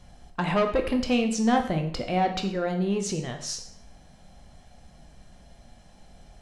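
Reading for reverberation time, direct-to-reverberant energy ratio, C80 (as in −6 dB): 0.60 s, 4.5 dB, 12.5 dB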